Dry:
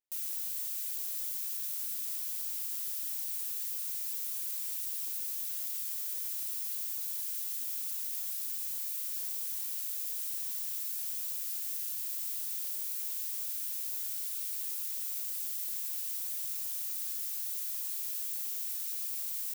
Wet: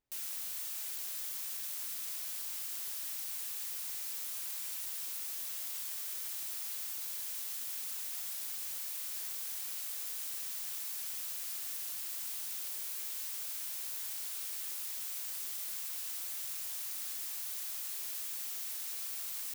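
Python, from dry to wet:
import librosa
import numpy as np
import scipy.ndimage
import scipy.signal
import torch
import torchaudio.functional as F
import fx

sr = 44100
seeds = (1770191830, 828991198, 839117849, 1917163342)

y = fx.tilt_eq(x, sr, slope=-3.0)
y = y * 10.0 ** (8.0 / 20.0)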